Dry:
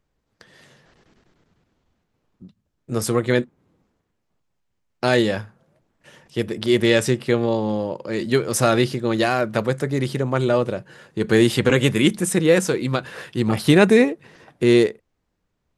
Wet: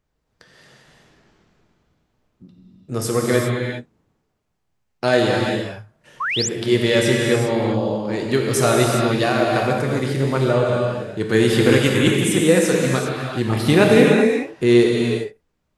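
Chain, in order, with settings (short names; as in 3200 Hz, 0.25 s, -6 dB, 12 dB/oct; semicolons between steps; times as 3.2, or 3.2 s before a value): non-linear reverb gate 0.43 s flat, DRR -1.5 dB; painted sound rise, 6.2–6.49, 980–7900 Hz -21 dBFS; gain -1.5 dB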